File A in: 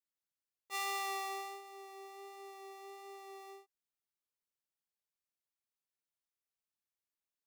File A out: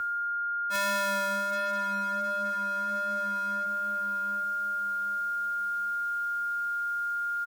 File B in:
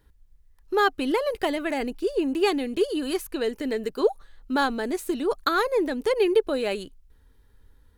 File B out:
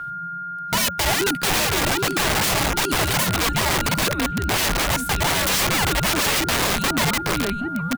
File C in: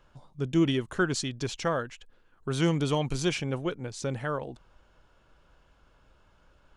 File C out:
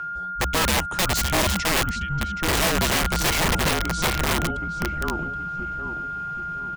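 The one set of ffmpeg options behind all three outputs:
ffmpeg -i in.wav -filter_complex "[0:a]areverse,acompressor=mode=upward:threshold=-42dB:ratio=2.5,areverse,asplit=2[link_01][link_02];[link_02]adelay=774,lowpass=frequency=1900:poles=1,volume=-4dB,asplit=2[link_03][link_04];[link_04]adelay=774,lowpass=frequency=1900:poles=1,volume=0.39,asplit=2[link_05][link_06];[link_06]adelay=774,lowpass=frequency=1900:poles=1,volume=0.39,asplit=2[link_07][link_08];[link_08]adelay=774,lowpass=frequency=1900:poles=1,volume=0.39,asplit=2[link_09][link_10];[link_10]adelay=774,lowpass=frequency=1900:poles=1,volume=0.39[link_11];[link_01][link_03][link_05][link_07][link_09][link_11]amix=inputs=6:normalize=0,aeval=exprs='val(0)+0.0178*sin(2*PI*1600*n/s)':channel_layout=same,aeval=exprs='(mod(13.3*val(0)+1,2)-1)/13.3':channel_layout=same,afreqshift=-190,volume=7dB" out.wav

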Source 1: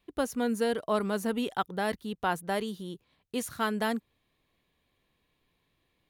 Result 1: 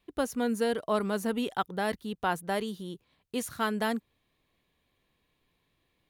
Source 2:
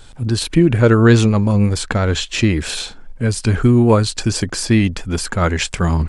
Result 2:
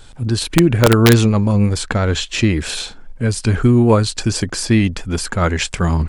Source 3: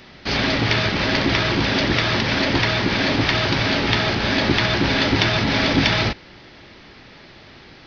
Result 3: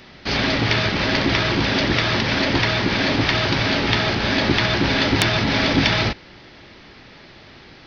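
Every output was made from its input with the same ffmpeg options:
ffmpeg -i in.wav -af "aeval=exprs='(mod(1.33*val(0)+1,2)-1)/1.33':channel_layout=same" out.wav

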